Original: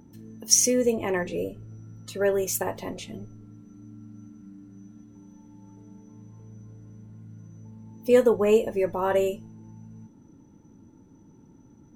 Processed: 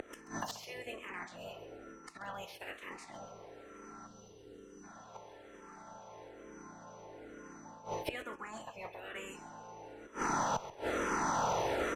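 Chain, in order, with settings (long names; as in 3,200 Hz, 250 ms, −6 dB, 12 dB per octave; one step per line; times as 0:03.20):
ceiling on every frequency bin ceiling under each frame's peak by 29 dB
low-pass filter 11,000 Hz 12 dB per octave
gain on a spectral selection 0:04.07–0:04.84, 530–2,700 Hz −13 dB
reversed playback
downward compressor 5 to 1, threshold −40 dBFS, peak gain reduction 23.5 dB
reversed playback
gate with flip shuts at −41 dBFS, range −28 dB
mid-hump overdrive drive 20 dB, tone 1,300 Hz, clips at −35.5 dBFS
in parallel at −4 dB: asymmetric clip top −54.5 dBFS
on the sum: repeating echo 133 ms, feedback 28%, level −14 dB
frequency shifter mixed with the dry sound −1.1 Hz
level +14.5 dB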